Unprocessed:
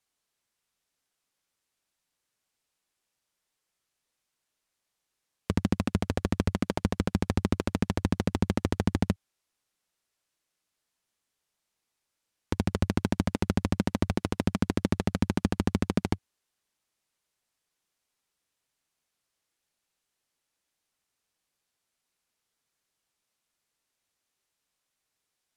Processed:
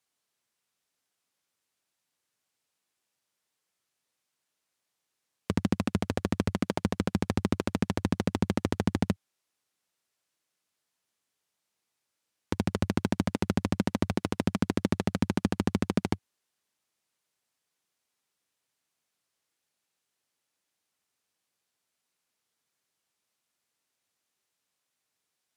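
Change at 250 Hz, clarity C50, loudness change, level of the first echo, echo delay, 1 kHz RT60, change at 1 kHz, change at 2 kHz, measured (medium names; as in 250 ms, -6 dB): 0.0 dB, no reverb, -0.5 dB, no echo, no echo, no reverb, 0.0 dB, 0.0 dB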